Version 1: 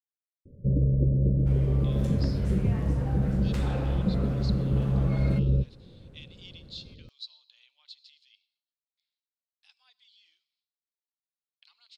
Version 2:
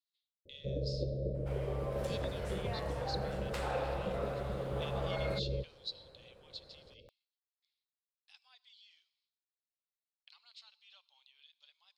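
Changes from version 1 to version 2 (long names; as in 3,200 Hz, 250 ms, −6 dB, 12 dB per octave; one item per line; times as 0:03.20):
speech: entry −1.35 s
second sound: add parametric band 6,300 Hz −2.5 dB 0.34 octaves
master: add low shelf with overshoot 370 Hz −14 dB, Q 1.5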